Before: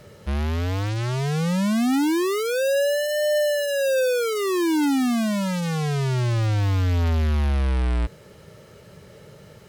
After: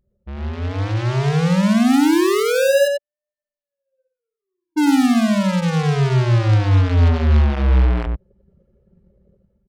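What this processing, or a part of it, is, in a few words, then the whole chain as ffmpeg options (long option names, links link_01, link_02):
voice memo with heavy noise removal: -filter_complex "[0:a]asplit=3[link_01][link_02][link_03];[link_01]afade=type=out:start_time=2.87:duration=0.02[link_04];[link_02]agate=range=-40dB:threshold=-17dB:ratio=16:detection=peak,afade=type=in:start_time=2.87:duration=0.02,afade=type=out:start_time=4.76:duration=0.02[link_05];[link_03]afade=type=in:start_time=4.76:duration=0.02[link_06];[link_04][link_05][link_06]amix=inputs=3:normalize=0,aecho=1:1:93:0.631,anlmdn=25.1,dynaudnorm=framelen=320:gausssize=5:maxgain=13.5dB,volume=-6.5dB"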